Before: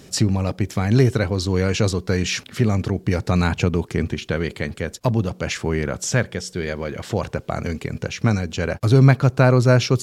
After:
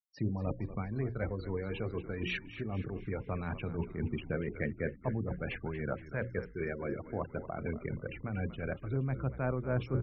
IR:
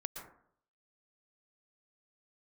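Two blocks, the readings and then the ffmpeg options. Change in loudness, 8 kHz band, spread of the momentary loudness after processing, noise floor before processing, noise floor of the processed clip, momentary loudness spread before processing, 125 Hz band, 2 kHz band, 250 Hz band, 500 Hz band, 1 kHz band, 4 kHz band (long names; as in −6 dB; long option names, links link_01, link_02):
−16.5 dB, below −40 dB, 4 LU, −47 dBFS, −52 dBFS, 11 LU, −17.5 dB, −14.5 dB, −15.5 dB, −15.0 dB, −16.0 dB, −21.0 dB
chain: -filter_complex "[0:a]lowpass=2700,bandreject=frequency=60:width_type=h:width=6,bandreject=frequency=120:width_type=h:width=6,bandreject=frequency=180:width_type=h:width=6,bandreject=frequency=240:width_type=h:width=6,bandreject=frequency=300:width_type=h:width=6,bandreject=frequency=360:width_type=h:width=6,bandreject=frequency=420:width_type=h:width=6,bandreject=frequency=480:width_type=h:width=6,bandreject=frequency=540:width_type=h:width=6,agate=range=-33dB:threshold=-38dB:ratio=3:detection=peak,highpass=92,afftfilt=real='re*gte(hypot(re,im),0.0447)':imag='im*gte(hypot(re,im),0.0447)':win_size=1024:overlap=0.75,areverse,acompressor=threshold=-32dB:ratio=6,areverse,aphaser=in_gain=1:out_gain=1:delay=3:decay=0.22:speed=0.21:type=sinusoidal,tremolo=f=3.9:d=0.4,asplit=6[link_01][link_02][link_03][link_04][link_05][link_06];[link_02]adelay=236,afreqshift=-71,volume=-13dB[link_07];[link_03]adelay=472,afreqshift=-142,volume=-18.8dB[link_08];[link_04]adelay=708,afreqshift=-213,volume=-24.7dB[link_09];[link_05]adelay=944,afreqshift=-284,volume=-30.5dB[link_10];[link_06]adelay=1180,afreqshift=-355,volume=-36.4dB[link_11];[link_01][link_07][link_08][link_09][link_10][link_11]amix=inputs=6:normalize=0"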